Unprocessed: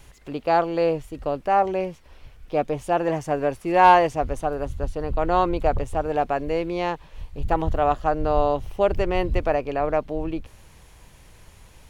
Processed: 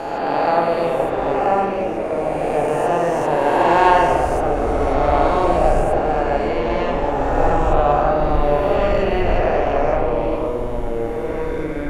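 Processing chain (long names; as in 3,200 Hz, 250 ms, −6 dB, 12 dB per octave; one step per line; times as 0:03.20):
peak hold with a rise ahead of every peak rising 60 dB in 2.78 s
spring reverb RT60 1.3 s, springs 41/46 ms, chirp 60 ms, DRR 0 dB
delay with pitch and tempo change per echo 270 ms, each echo −4 semitones, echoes 3, each echo −6 dB
level −3 dB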